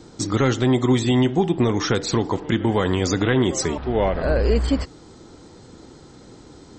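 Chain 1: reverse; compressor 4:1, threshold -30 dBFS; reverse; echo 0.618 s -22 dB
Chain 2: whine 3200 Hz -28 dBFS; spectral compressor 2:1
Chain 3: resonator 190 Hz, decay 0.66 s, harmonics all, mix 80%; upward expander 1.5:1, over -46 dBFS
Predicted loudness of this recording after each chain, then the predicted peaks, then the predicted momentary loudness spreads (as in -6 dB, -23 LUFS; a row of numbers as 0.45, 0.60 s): -32.5, -22.5, -34.0 LUFS; -16.5, -5.0, -18.0 dBFS; 14, 8, 9 LU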